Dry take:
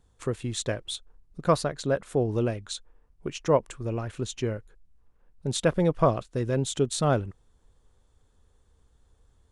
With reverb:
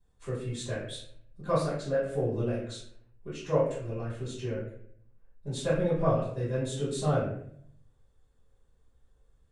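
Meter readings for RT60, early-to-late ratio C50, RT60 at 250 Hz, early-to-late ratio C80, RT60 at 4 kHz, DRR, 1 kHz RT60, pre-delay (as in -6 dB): 0.65 s, 2.5 dB, 0.80 s, 6.0 dB, 0.45 s, -14.5 dB, 0.55 s, 3 ms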